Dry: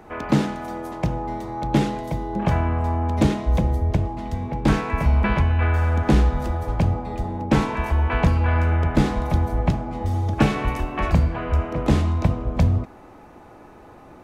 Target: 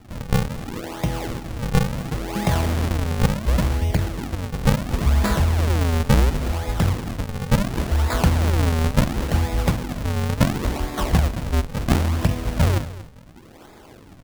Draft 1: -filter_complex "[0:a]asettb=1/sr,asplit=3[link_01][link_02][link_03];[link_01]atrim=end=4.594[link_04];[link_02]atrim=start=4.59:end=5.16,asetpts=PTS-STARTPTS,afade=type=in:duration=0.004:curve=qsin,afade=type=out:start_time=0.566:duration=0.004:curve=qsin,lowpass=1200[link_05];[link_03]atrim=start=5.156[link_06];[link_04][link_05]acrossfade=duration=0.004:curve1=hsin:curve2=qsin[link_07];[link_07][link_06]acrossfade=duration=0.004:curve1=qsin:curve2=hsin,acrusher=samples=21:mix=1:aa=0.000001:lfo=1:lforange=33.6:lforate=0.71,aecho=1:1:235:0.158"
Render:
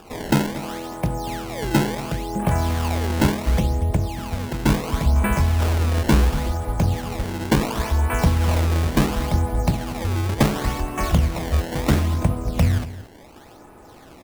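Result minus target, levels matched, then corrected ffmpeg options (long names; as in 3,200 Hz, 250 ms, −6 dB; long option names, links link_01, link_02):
sample-and-hold swept by an LFO: distortion −8 dB
-filter_complex "[0:a]asettb=1/sr,asplit=3[link_01][link_02][link_03];[link_01]atrim=end=4.594[link_04];[link_02]atrim=start=4.59:end=5.16,asetpts=PTS-STARTPTS,afade=type=in:duration=0.004:curve=qsin,afade=type=out:start_time=0.566:duration=0.004:curve=qsin,lowpass=1200[link_05];[link_03]atrim=start=5.156[link_06];[link_04][link_05]acrossfade=duration=0.004:curve1=hsin:curve2=qsin[link_07];[link_07][link_06]acrossfade=duration=0.004:curve1=qsin:curve2=hsin,acrusher=samples=76:mix=1:aa=0.000001:lfo=1:lforange=122:lforate=0.71,aecho=1:1:235:0.158"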